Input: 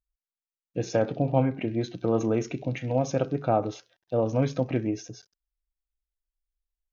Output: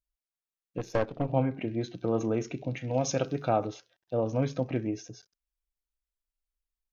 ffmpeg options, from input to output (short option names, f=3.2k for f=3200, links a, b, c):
-filter_complex "[0:a]asettb=1/sr,asplit=3[a][b][c];[a]atrim=end=0.784[d];[b]atrim=start=0.78:end=1.3,asetpts=PTS-STARTPTS,afade=t=in:d=0.004:c=qsin,afade=t=out:st=0.516:d=0.004:c=qsin,aeval=exprs='0.266*(cos(1*acos(clip(val(0)/0.266,-1,1)))-cos(1*PI/2))+0.0422*(cos(4*acos(clip(val(0)/0.266,-1,1)))-cos(4*PI/2))+0.0211*(cos(7*acos(clip(val(0)/0.266,-1,1)))-cos(7*PI/2))':c=same[e];[c]atrim=start=1.296[f];[d][e]acrossfade=d=0.004:c1=hsin:c2=qsin[g];[g][f]acrossfade=d=0.004:c1=qsin:c2=hsin,asettb=1/sr,asplit=3[h][i][j];[h]atrim=end=2.934[k];[i]atrim=start=2.93:end=3.66,asetpts=PTS-STARTPTS,afade=t=in:d=0.004:c=qsin,afade=t=out:st=0.726:d=0.004:c=qsin,highshelf=f=2.2k:g=11.5[l];[j]atrim=start=3.656[m];[k][l]acrossfade=d=0.004:c1=hsin:c2=qsin[n];[n][m]acrossfade=d=0.004:c1=qsin:c2=hsin,volume=-3.5dB"